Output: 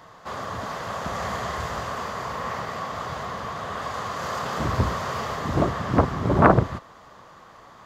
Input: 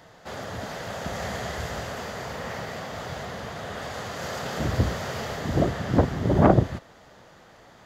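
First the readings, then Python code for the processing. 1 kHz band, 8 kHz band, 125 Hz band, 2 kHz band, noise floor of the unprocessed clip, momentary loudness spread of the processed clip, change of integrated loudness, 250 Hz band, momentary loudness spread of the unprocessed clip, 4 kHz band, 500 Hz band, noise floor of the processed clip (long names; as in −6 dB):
+6.0 dB, −0.5 dB, 0.0 dB, +3.0 dB, −52 dBFS, 12 LU, +1.5 dB, −0.5 dB, 14 LU, 0.0 dB, +1.0 dB, −49 dBFS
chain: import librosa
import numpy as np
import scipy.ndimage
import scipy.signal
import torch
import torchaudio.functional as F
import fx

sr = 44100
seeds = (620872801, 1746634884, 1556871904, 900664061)

y = fx.peak_eq(x, sr, hz=1100.0, db=14.0, octaves=0.37)
y = fx.doppler_dist(y, sr, depth_ms=0.54)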